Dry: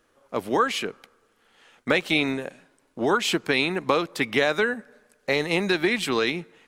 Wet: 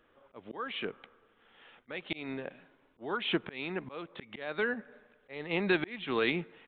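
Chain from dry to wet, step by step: auto swell 0.581 s; downsampling 8000 Hz; gain -1.5 dB

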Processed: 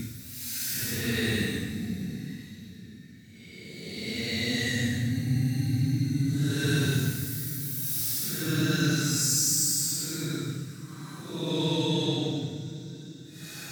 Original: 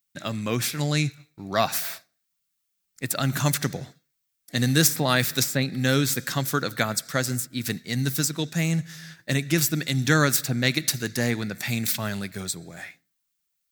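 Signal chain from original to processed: Paulstretch 15×, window 0.05 s, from 7.62; split-band echo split 330 Hz, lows 0.77 s, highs 0.198 s, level -13.5 dB; gain -2.5 dB

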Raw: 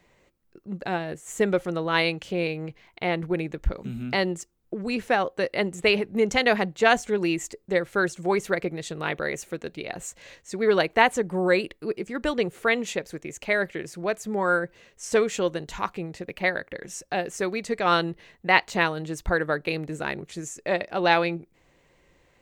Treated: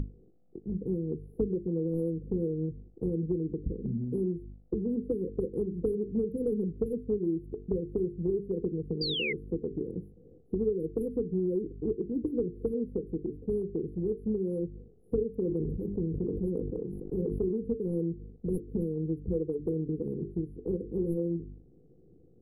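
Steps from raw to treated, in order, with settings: Wiener smoothing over 41 samples; HPF 96 Hz 12 dB/oct; hum 50 Hz, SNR 10 dB; sine folder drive 9 dB, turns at -2.5 dBFS; brick-wall FIR band-stop 510–9700 Hz; 9.01–9.33 painted sound fall 2000–4900 Hz -19 dBFS; compressor 10:1, threshold -26 dBFS, peak gain reduction 20.5 dB; high shelf 6700 Hz -8.5 dB; notches 50/100/150/200/250/300/350/400/450 Hz; 15.4–17.57 sustainer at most 25 dB/s

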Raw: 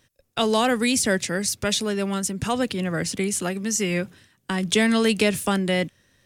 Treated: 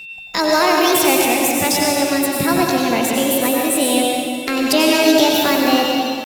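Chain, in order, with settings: in parallel at +1.5 dB: compressor 6:1, threshold -29 dBFS, peak gain reduction 13.5 dB; on the sum: pitch shift +6 st; whine 2700 Hz -33 dBFS; harmoniser +5 st -15 dB; plate-style reverb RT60 2.2 s, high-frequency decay 0.85×, pre-delay 80 ms, DRR -1.5 dB; gain +1 dB

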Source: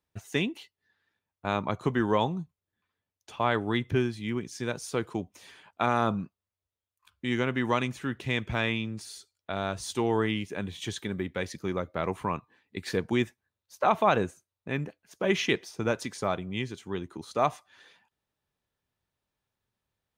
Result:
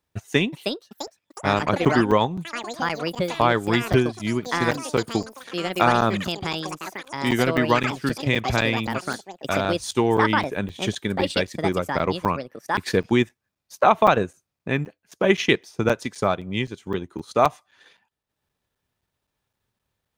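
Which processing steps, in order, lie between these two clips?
transient shaper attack +3 dB, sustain -7 dB; echoes that change speed 0.416 s, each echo +6 st, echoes 3, each echo -6 dB; crackling interface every 0.26 s, samples 256, zero, from 0.81; gain +6 dB

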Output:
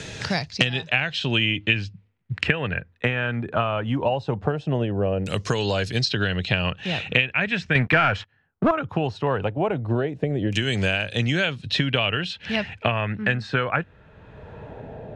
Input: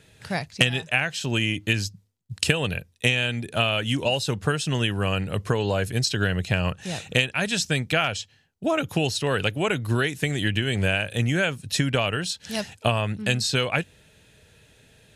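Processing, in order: high shelf 11000 Hz -6.5 dB; 7.75–8.71 sample leveller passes 3; LFO low-pass saw down 0.19 Hz 520–6500 Hz; three-band squash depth 70%; gain -1 dB

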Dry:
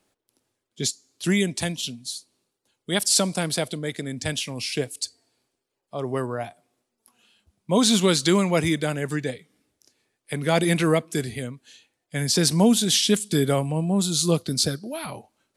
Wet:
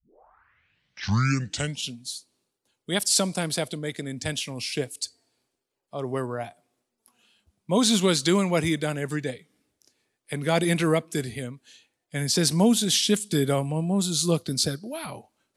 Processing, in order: tape start at the beginning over 1.92 s; gain -2 dB

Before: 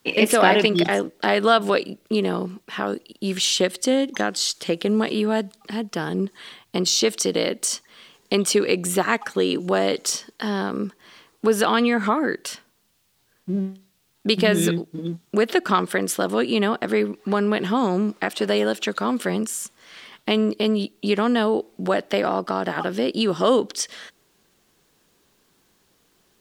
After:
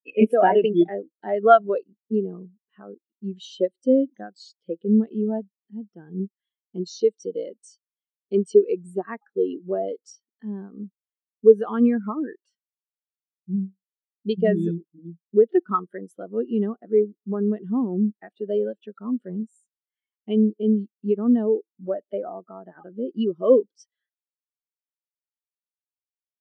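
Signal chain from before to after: spectral expander 2.5:1

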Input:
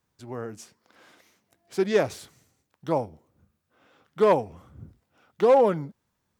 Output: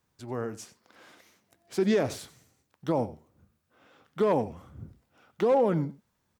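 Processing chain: dynamic EQ 240 Hz, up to +6 dB, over -34 dBFS, Q 0.93; limiter -17.5 dBFS, peak gain reduction 9.5 dB; on a send: echo 91 ms -18 dB; on the sum: gain +1 dB

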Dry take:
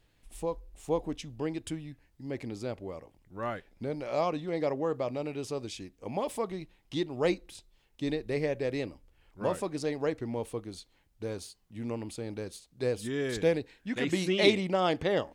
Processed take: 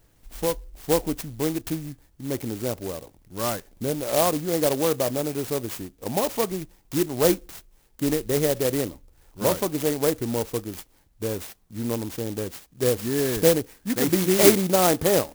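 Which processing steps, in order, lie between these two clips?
clock jitter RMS 0.11 ms; gain +8 dB

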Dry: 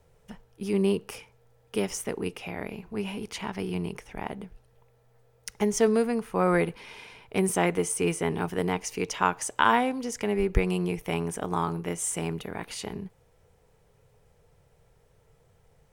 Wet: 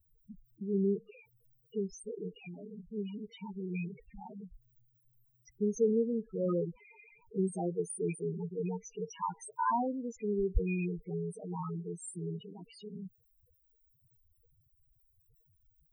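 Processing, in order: rattling part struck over -28 dBFS, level -14 dBFS; added noise blue -49 dBFS; loudest bins only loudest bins 4; gain -4.5 dB

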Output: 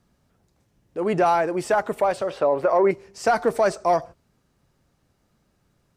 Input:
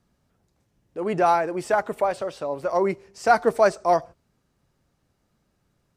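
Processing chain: in parallel at -7 dB: soft clip -17.5 dBFS, distortion -11 dB; 2.3–2.91 on the sum: EQ curve 220 Hz 0 dB, 400 Hz +7 dB, 1900 Hz +6 dB, 6200 Hz -7 dB; limiter -11 dBFS, peak gain reduction 7.5 dB

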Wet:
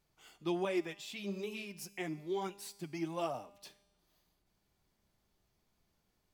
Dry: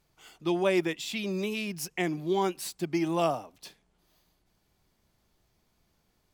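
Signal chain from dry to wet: 0.65–3.35 flange 1.1 Hz, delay 0.7 ms, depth 7.3 ms, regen +26%; resonator 200 Hz, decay 1.1 s, mix 60%; gain +1 dB

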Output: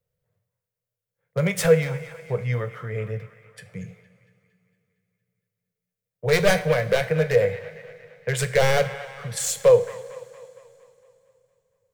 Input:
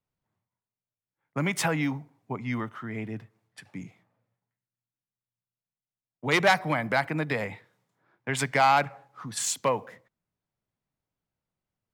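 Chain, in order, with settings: one-sided fold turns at -21 dBFS; EQ curve 180 Hz 0 dB, 280 Hz -29 dB, 480 Hz +10 dB, 850 Hz -14 dB, 1700 Hz -5 dB, 2400 Hz -7 dB, 4200 Hz -7 dB, 9600 Hz -4 dB, 16000 Hz 0 dB; band-limited delay 0.23 s, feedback 54%, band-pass 1600 Hz, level -12 dB; on a send at -9 dB: reverb, pre-delay 3 ms; on the sum: gain +7.5 dB

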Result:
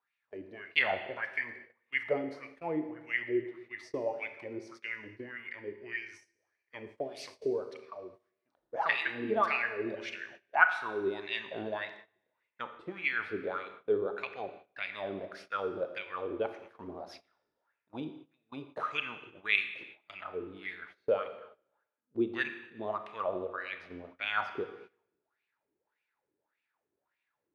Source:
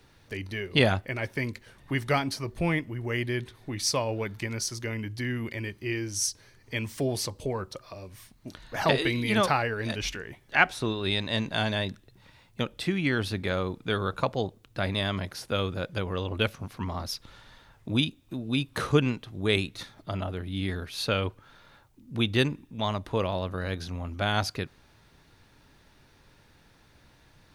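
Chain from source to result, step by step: wah 1.7 Hz 350–2500 Hz, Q 5.9; Schroeder reverb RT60 1.1 s, combs from 26 ms, DRR 8.5 dB; gate -56 dBFS, range -18 dB; gain +5.5 dB

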